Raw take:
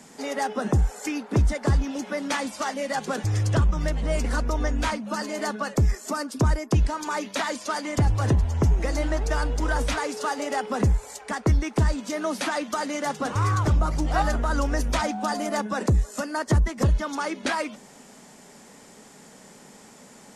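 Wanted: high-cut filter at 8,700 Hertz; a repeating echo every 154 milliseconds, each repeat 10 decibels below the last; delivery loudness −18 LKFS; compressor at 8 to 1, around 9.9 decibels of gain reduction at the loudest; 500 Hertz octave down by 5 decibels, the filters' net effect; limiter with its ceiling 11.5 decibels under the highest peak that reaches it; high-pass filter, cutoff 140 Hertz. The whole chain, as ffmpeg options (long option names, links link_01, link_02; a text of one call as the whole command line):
ffmpeg -i in.wav -af "highpass=140,lowpass=8700,equalizer=frequency=500:width_type=o:gain=-6.5,acompressor=threshold=-31dB:ratio=8,alimiter=level_in=6dB:limit=-24dB:level=0:latency=1,volume=-6dB,aecho=1:1:154|308|462|616:0.316|0.101|0.0324|0.0104,volume=20.5dB" out.wav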